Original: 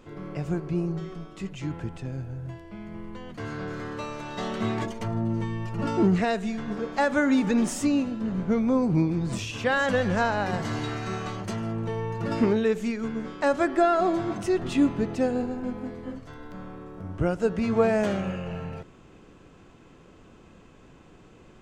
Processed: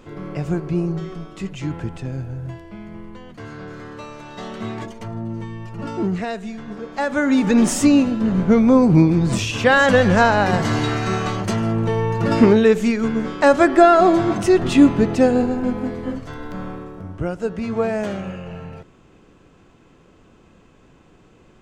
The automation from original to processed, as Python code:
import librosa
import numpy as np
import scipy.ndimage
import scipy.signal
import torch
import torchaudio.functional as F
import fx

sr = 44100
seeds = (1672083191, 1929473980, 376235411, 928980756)

y = fx.gain(x, sr, db=fx.line((2.49, 6.0), (3.49, -1.0), (6.86, -1.0), (7.71, 10.0), (16.7, 10.0), (17.22, 0.5)))